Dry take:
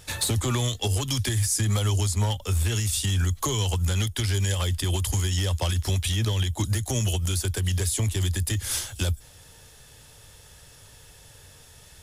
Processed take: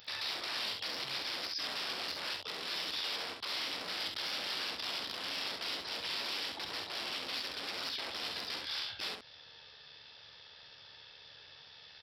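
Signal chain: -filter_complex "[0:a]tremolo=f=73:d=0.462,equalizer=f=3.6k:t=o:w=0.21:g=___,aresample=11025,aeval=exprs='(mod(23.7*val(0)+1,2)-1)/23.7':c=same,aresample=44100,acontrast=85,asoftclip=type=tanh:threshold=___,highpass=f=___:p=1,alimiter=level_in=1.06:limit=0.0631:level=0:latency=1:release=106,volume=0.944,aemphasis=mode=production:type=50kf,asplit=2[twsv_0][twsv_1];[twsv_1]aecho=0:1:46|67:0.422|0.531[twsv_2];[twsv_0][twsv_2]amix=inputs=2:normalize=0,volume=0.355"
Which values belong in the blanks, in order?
3, 0.15, 750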